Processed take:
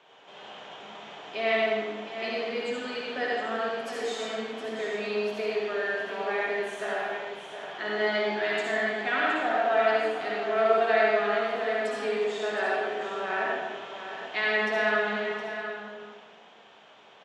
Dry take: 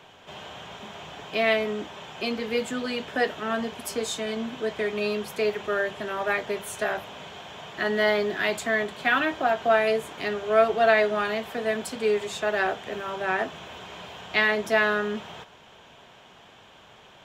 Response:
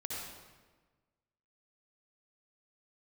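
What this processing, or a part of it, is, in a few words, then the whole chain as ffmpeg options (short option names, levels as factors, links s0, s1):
supermarket ceiling speaker: -filter_complex "[0:a]highpass=290,lowpass=5500[s0];[1:a]atrim=start_sample=2205[s1];[s0][s1]afir=irnorm=-1:irlink=0,asettb=1/sr,asplit=3[s2][s3][s4];[s2]atrim=end=5.744[s5];[s3]atrim=start=5.74:end=6.74,asetpts=PTS-STARTPTS,afade=t=in:d=0.004:c=qsin,afade=t=out:st=0.996:d=0.004:c=qsin,bandreject=f=1300:w=5.1[s6];[s4]atrim=start=6.736[s7];[s5][s6]acrossfade=d=0.004:c1=hsin:c2=qsin[s8];[s8][s7]acrossfade=d=0.004:c1=qsin:c2=hsin,aecho=1:1:715:0.316,volume=0.708"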